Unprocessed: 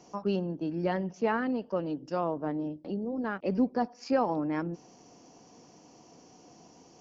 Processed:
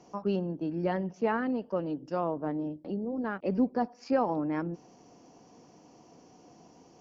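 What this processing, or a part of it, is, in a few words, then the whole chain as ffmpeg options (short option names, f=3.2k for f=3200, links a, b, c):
behind a face mask: -af "highshelf=f=3.3k:g=-7"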